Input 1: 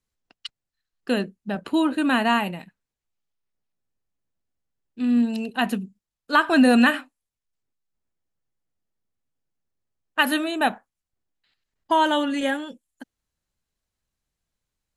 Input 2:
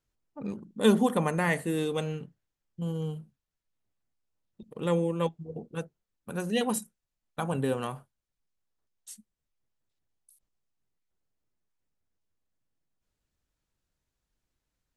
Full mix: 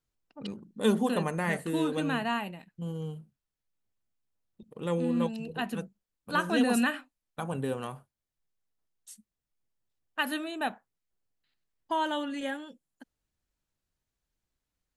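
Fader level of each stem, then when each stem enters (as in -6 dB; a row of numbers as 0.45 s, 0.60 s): -10.0 dB, -3.5 dB; 0.00 s, 0.00 s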